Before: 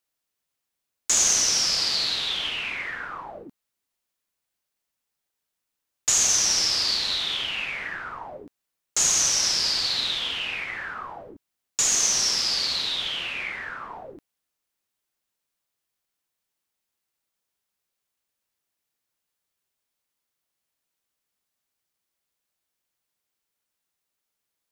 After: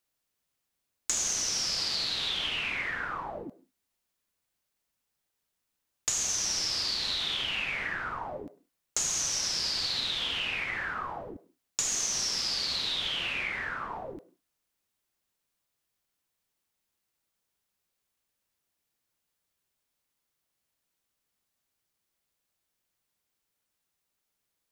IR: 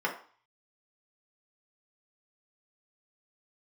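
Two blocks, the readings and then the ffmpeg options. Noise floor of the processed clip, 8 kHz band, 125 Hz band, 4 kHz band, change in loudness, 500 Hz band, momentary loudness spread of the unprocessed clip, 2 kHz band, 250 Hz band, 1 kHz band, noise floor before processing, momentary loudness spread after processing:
-83 dBFS, -8.5 dB, -1.5 dB, -6.0 dB, -7.5 dB, -2.5 dB, 18 LU, -2.5 dB, -2.0 dB, -2.0 dB, -83 dBFS, 12 LU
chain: -filter_complex "[0:a]lowshelf=f=250:g=5,acompressor=threshold=-28dB:ratio=5,asplit=2[a][b];[1:a]atrim=start_sample=2205,afade=t=out:st=0.17:d=0.01,atrim=end_sample=7938,adelay=98[c];[b][c]afir=irnorm=-1:irlink=0,volume=-26.5dB[d];[a][d]amix=inputs=2:normalize=0"

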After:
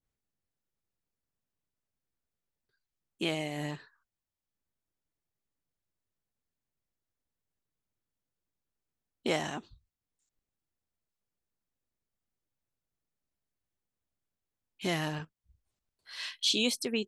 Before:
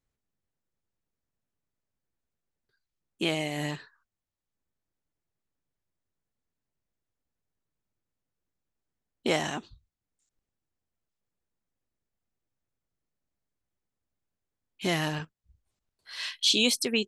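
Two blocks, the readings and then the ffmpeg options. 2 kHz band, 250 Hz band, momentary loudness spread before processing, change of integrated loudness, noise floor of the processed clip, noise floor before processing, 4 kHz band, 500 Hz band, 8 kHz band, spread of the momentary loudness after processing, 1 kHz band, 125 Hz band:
-5.0 dB, -3.5 dB, 16 LU, -4.5 dB, under -85 dBFS, under -85 dBFS, -5.0 dB, -3.5 dB, -5.5 dB, 16 LU, -3.5 dB, -3.5 dB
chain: -af "adynamicequalizer=threshold=0.00794:dfrequency=1600:dqfactor=0.7:tfrequency=1600:tqfactor=0.7:attack=5:release=100:ratio=0.375:range=3:mode=cutabove:tftype=highshelf,volume=-3.5dB"

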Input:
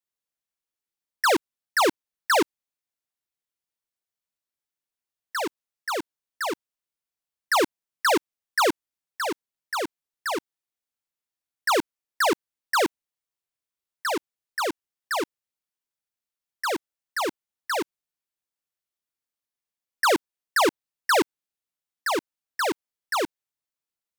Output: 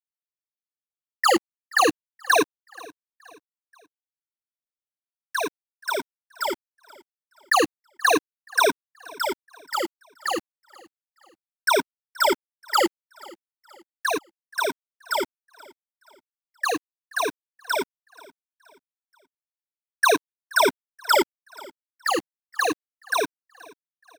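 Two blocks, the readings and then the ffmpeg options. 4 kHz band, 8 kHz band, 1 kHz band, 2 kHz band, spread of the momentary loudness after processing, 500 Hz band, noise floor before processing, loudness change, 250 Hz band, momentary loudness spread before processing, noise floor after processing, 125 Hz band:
+2.0 dB, +2.5 dB, +2.0 dB, +2.5 dB, 16 LU, +1.5 dB, under -85 dBFS, +2.0 dB, 0.0 dB, 12 LU, under -85 dBFS, n/a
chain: -filter_complex "[0:a]afftfilt=real='re*pow(10,22/40*sin(2*PI*(1.6*log(max(b,1)*sr/1024/100)/log(2)-(-0.34)*(pts-256)/sr)))':imag='im*pow(10,22/40*sin(2*PI*(1.6*log(max(b,1)*sr/1024/100)/log(2)-(-0.34)*(pts-256)/sr)))':win_size=1024:overlap=0.75,equalizer=f=69:w=0.53:g=-3.5,acrusher=bits=6:mix=0:aa=0.000001,asplit=2[a][b];[b]aecho=0:1:478|956|1434:0.0708|0.0304|0.0131[c];[a][c]amix=inputs=2:normalize=0,volume=-3dB"

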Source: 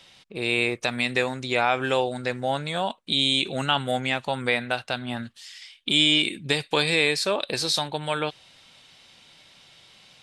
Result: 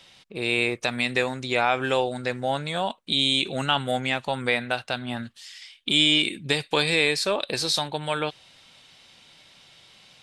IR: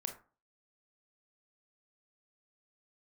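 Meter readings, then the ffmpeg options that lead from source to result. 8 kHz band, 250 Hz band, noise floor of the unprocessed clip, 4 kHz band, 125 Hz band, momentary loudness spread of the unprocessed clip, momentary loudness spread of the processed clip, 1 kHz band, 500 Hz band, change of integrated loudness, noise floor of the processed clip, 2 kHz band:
0.0 dB, 0.0 dB, -55 dBFS, 0.0 dB, 0.0 dB, 10 LU, 10 LU, 0.0 dB, 0.0 dB, 0.0 dB, -55 dBFS, 0.0 dB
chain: -af "aeval=exprs='0.447*(cos(1*acos(clip(val(0)/0.447,-1,1)))-cos(1*PI/2))+0.00251*(cos(6*acos(clip(val(0)/0.447,-1,1)))-cos(6*PI/2))':c=same"

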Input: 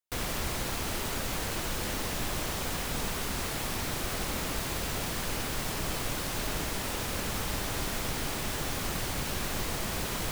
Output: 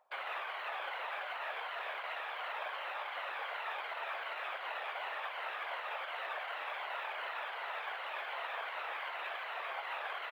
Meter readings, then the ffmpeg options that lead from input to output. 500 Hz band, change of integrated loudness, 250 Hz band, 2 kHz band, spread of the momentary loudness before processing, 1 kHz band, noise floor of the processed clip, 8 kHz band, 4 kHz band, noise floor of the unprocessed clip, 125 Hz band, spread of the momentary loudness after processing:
-8.0 dB, -7.5 dB, under -30 dB, -2.0 dB, 0 LU, -1.5 dB, -43 dBFS, under -35 dB, -10.5 dB, -34 dBFS, under -40 dB, 1 LU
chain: -filter_complex "[0:a]afftfilt=real='re*pow(10,7/40*sin(2*PI*(1.8*log(max(b,1)*sr/1024/100)/log(2)-(-2.7)*(pts-256)/sr)))':imag='im*pow(10,7/40*sin(2*PI*(1.8*log(max(b,1)*sr/1024/100)/log(2)-(-2.7)*(pts-256)/sr)))':win_size=1024:overlap=0.75,acrossover=split=920[a][b];[a]acompressor=mode=upward:threshold=-55dB:ratio=2.5[c];[c][b]amix=inputs=2:normalize=0,alimiter=limit=-24dB:level=0:latency=1:release=144,acrossover=split=850|2600[d][e][f];[d]acompressor=threshold=-40dB:ratio=4[g];[e]acompressor=threshold=-45dB:ratio=4[h];[f]acompressor=threshold=-54dB:ratio=4[i];[g][h][i]amix=inputs=3:normalize=0,asoftclip=type=tanh:threshold=-31.5dB,afftfilt=real='hypot(re,im)*cos(2*PI*random(0))':imag='hypot(re,im)*sin(2*PI*random(1))':win_size=512:overlap=0.75,asplit=2[j][k];[k]adelay=14,volume=-12dB[l];[j][l]amix=inputs=2:normalize=0,asplit=2[m][n];[n]adelay=120,lowpass=f=1.8k:p=1,volume=-21dB,asplit=2[o][p];[p]adelay=120,lowpass=f=1.8k:p=1,volume=0.35,asplit=2[q][r];[r]adelay=120,lowpass=f=1.8k:p=1,volume=0.35[s];[o][q][s]amix=inputs=3:normalize=0[t];[m][t]amix=inputs=2:normalize=0,highpass=f=510:t=q:w=0.5412,highpass=f=510:t=q:w=1.307,lowpass=f=3.3k:t=q:w=0.5176,lowpass=f=3.3k:t=q:w=0.7071,lowpass=f=3.3k:t=q:w=1.932,afreqshift=110,volume=11dB" -ar 44100 -c:a adpcm_ima_wav

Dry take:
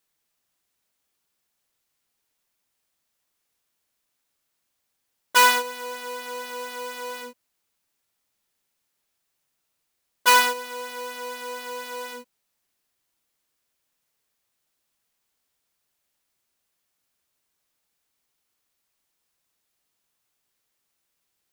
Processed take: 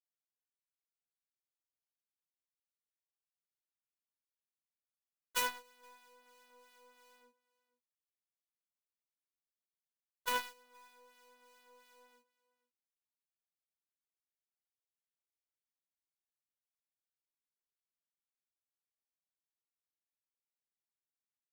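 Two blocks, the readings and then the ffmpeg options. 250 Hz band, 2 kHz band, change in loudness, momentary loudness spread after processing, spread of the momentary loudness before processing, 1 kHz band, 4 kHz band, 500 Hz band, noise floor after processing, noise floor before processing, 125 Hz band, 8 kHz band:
-18.0 dB, -20.0 dB, -14.0 dB, 14 LU, 18 LU, -20.5 dB, -18.5 dB, -20.5 dB, under -85 dBFS, -77 dBFS, n/a, -17.5 dB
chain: -filter_complex "[0:a]acrossover=split=1400[a][b];[a]aeval=exprs='val(0)*(1-0.5/2+0.5/2*cos(2*PI*2.9*n/s))':c=same[c];[b]aeval=exprs='val(0)*(1-0.5/2-0.5/2*cos(2*PI*2.9*n/s))':c=same[d];[c][d]amix=inputs=2:normalize=0,aecho=1:1:475:0.106,aeval=exprs='0.531*(cos(1*acos(clip(val(0)/0.531,-1,1)))-cos(1*PI/2))+0.168*(cos(3*acos(clip(val(0)/0.531,-1,1)))-cos(3*PI/2))+0.00596*(cos(4*acos(clip(val(0)/0.531,-1,1)))-cos(4*PI/2))+0.00473*(cos(5*acos(clip(val(0)/0.531,-1,1)))-cos(5*PI/2))+0.00335*(cos(8*acos(clip(val(0)/0.531,-1,1)))-cos(8*PI/2))':c=same,volume=-7.5dB"

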